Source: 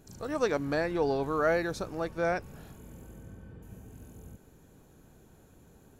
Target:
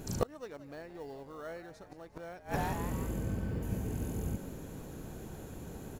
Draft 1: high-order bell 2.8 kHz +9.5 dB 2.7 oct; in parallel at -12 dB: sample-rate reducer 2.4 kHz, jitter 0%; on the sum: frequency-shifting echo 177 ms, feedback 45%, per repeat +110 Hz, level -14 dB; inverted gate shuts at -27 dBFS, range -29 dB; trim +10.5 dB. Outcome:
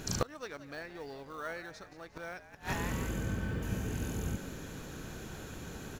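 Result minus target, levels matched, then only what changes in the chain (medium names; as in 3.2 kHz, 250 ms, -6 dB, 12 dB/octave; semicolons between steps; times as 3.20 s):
2 kHz band +6.0 dB
remove: high-order bell 2.8 kHz +9.5 dB 2.7 oct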